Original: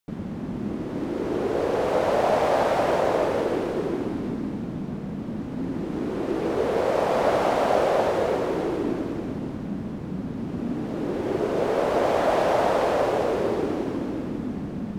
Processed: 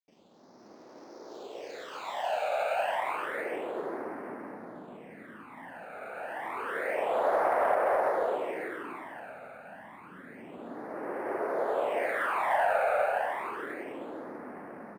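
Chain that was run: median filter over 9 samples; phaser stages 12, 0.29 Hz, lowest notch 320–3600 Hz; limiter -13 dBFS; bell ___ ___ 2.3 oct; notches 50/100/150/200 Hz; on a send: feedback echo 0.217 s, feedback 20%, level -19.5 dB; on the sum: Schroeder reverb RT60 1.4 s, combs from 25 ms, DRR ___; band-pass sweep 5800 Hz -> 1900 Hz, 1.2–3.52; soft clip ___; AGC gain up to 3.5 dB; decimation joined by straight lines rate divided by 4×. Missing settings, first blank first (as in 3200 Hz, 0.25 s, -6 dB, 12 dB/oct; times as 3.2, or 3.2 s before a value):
660 Hz, +10.5 dB, 18.5 dB, -18.5 dBFS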